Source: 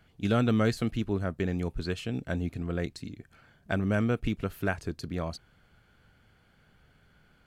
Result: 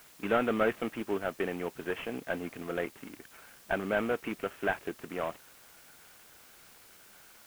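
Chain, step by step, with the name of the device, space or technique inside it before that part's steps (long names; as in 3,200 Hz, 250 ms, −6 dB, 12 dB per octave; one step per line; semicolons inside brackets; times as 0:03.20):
army field radio (band-pass filter 400–3,200 Hz; variable-slope delta modulation 16 kbit/s; white noise bed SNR 22 dB)
level +4 dB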